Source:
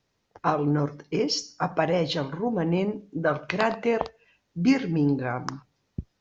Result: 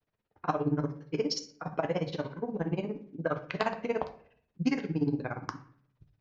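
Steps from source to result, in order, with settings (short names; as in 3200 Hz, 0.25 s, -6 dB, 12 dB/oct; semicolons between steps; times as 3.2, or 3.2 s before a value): low-pass opened by the level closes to 2700 Hz, open at -19 dBFS; grains 52 ms, grains 17/s, spray 11 ms, pitch spread up and down by 0 st; reverb RT60 0.55 s, pre-delay 6 ms, DRR 7.5 dB; gain -3.5 dB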